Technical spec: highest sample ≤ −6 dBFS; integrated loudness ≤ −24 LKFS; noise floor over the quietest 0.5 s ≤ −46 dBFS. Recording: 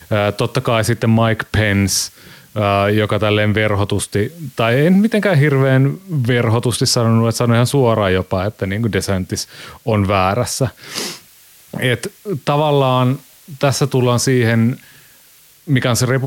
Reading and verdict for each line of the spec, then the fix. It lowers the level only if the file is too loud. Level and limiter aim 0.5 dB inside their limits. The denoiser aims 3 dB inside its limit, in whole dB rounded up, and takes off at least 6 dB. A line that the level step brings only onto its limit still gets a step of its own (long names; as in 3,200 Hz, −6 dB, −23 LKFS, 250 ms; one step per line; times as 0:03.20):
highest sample −4.5 dBFS: out of spec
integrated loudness −16.0 LKFS: out of spec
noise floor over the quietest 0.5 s −48 dBFS: in spec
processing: level −8.5 dB